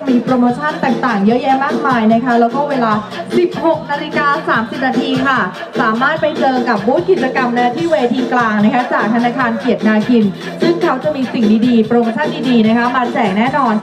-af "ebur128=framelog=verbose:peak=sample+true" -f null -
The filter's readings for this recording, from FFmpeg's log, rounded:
Integrated loudness:
  I:         -13.6 LUFS
  Threshold: -23.6 LUFS
Loudness range:
  LRA:         1.4 LU
  Threshold: -33.7 LUFS
  LRA low:   -14.5 LUFS
  LRA high:  -13.1 LUFS
Sample peak:
  Peak:       -2.3 dBFS
True peak:
  Peak:       -2.3 dBFS